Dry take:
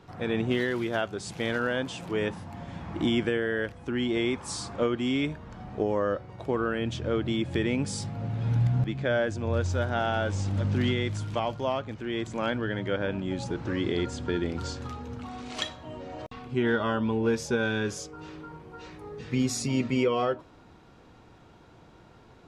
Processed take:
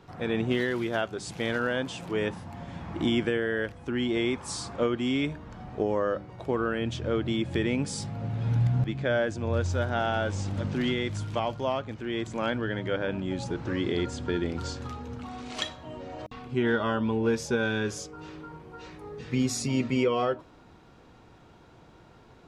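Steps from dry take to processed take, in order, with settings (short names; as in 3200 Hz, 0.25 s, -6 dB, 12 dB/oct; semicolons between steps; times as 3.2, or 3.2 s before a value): de-hum 100.2 Hz, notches 3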